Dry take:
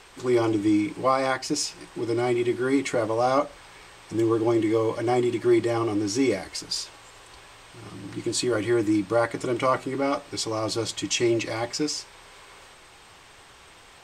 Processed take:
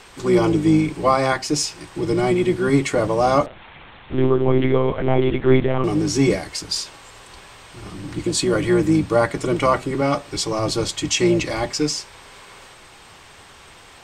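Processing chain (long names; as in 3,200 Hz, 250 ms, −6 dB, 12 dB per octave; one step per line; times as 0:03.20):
sub-octave generator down 1 octave, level −3 dB
0:03.46–0:05.84: one-pitch LPC vocoder at 8 kHz 130 Hz
level +5 dB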